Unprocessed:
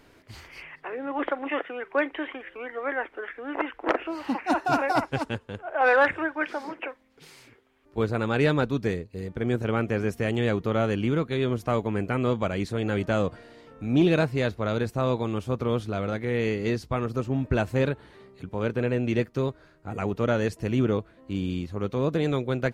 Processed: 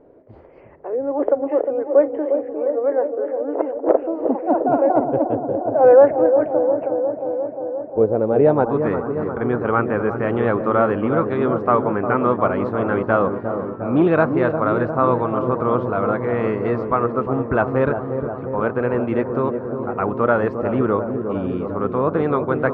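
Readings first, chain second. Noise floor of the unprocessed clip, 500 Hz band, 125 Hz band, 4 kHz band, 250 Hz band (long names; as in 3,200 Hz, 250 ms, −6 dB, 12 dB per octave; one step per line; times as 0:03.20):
−58 dBFS, +10.5 dB, +1.5 dB, below −10 dB, +6.0 dB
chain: low-shelf EQ 170 Hz −10.5 dB
on a send: delay with a low-pass on its return 354 ms, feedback 73%, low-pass 800 Hz, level −6 dB
on the sum: low-pass filter sweep 550 Hz → 1,200 Hz, 0:08.31–0:08.87
feedback echo with a swinging delay time 371 ms, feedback 32%, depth 116 cents, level −20 dB
level +6.5 dB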